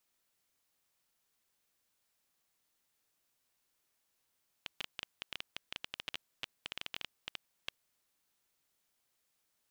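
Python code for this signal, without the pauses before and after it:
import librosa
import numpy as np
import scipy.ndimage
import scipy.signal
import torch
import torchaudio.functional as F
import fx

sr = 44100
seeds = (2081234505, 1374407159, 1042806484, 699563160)

y = fx.geiger_clicks(sr, seeds[0], length_s=3.19, per_s=11.0, level_db=-21.0)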